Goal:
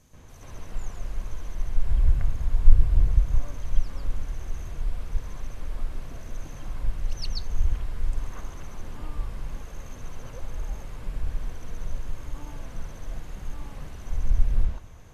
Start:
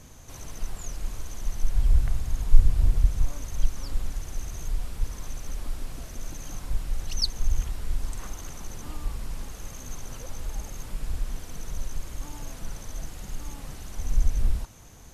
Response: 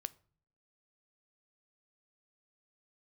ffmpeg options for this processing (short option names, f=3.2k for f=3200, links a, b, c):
-filter_complex "[0:a]asplit=2[a][b];[1:a]atrim=start_sample=2205,lowpass=2.7k,adelay=133[c];[b][c]afir=irnorm=-1:irlink=0,volume=13.5dB[d];[a][d]amix=inputs=2:normalize=0,volume=-11dB"